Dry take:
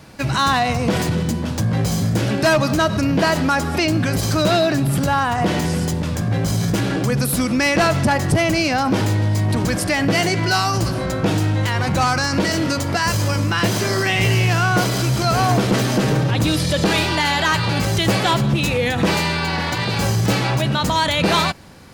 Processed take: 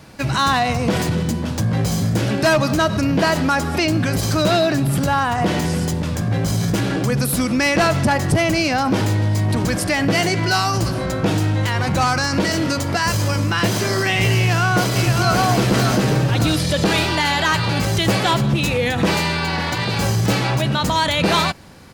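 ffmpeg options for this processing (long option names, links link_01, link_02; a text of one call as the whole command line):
ffmpeg -i in.wav -filter_complex "[0:a]asplit=2[link_01][link_02];[link_02]afade=type=in:start_time=14.37:duration=0.01,afade=type=out:start_time=15.37:duration=0.01,aecho=0:1:580|1160|1740|2320|2900|3480:0.595662|0.268048|0.120622|0.0542797|0.0244259|0.0109916[link_03];[link_01][link_03]amix=inputs=2:normalize=0" out.wav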